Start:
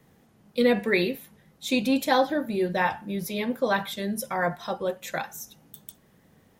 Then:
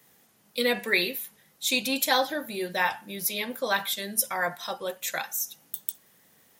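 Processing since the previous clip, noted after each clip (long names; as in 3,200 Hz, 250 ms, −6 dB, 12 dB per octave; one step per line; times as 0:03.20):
spectral tilt +3.5 dB per octave
level −1.5 dB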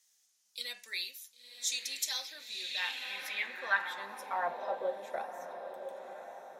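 feedback delay with all-pass diffusion 1,021 ms, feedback 50%, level −8 dB
band-pass filter sweep 6,100 Hz → 620 Hz, 0:02.14–0:04.78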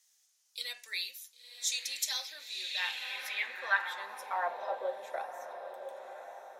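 high-pass filter 480 Hz 12 dB per octave
level +1 dB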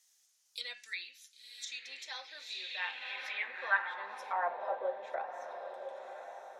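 gain on a spectral selection 0:00.74–0:01.85, 350–1,300 Hz −11 dB
treble cut that deepens with the level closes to 2,300 Hz, closed at −34 dBFS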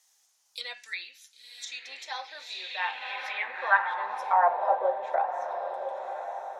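parametric band 840 Hz +10.5 dB 1.2 octaves
level +3 dB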